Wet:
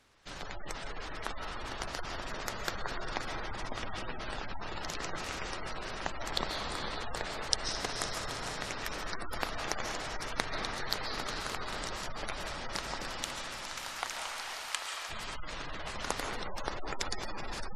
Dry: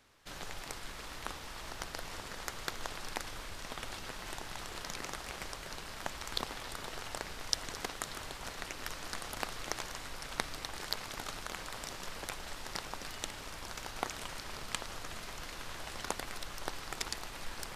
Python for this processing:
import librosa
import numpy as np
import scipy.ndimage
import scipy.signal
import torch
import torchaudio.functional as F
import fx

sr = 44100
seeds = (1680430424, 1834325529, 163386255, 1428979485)

p1 = fx.highpass(x, sr, hz=880.0, slope=12, at=(13.08, 15.09), fade=0.02)
p2 = fx.rev_freeverb(p1, sr, rt60_s=2.0, hf_ratio=0.5, predelay_ms=100, drr_db=2.0)
p3 = fx.quant_companded(p2, sr, bits=4)
p4 = p2 + F.gain(torch.from_numpy(p3), -11.0).numpy()
p5 = fx.echo_diffused(p4, sr, ms=482, feedback_pct=52, wet_db=-8.0)
y = fx.spec_gate(p5, sr, threshold_db=-25, keep='strong')